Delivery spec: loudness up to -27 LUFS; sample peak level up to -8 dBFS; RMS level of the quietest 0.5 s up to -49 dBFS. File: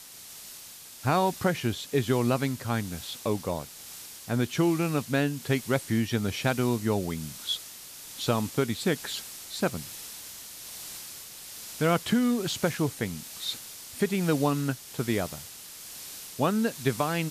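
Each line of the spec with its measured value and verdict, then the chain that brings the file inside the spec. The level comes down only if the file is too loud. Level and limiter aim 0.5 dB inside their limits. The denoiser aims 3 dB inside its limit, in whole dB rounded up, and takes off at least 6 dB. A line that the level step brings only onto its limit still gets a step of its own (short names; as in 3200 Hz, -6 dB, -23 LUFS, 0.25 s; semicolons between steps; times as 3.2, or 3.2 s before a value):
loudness -29.0 LUFS: OK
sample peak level -12.0 dBFS: OK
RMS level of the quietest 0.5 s -46 dBFS: fail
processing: denoiser 6 dB, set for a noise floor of -46 dBFS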